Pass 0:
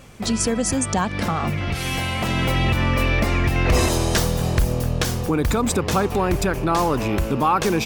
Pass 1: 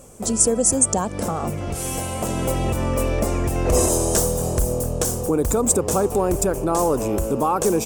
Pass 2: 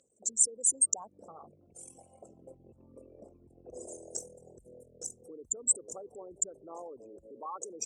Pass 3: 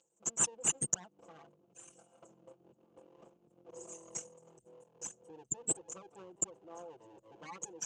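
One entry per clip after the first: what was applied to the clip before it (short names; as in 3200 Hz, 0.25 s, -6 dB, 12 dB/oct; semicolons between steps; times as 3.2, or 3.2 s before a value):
ten-band EQ 125 Hz -3 dB, 500 Hz +7 dB, 2000 Hz -10 dB, 4000 Hz -10 dB, 8000 Hz +12 dB, 16000 Hz +5 dB; gain -2 dB
formant sharpening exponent 3; band-pass 5000 Hz, Q 1.8
minimum comb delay 5.9 ms; speaker cabinet 130–8300 Hz, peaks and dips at 430 Hz +3 dB, 1900 Hz -6 dB, 2900 Hz +9 dB, 6600 Hz +10 dB; gain -5 dB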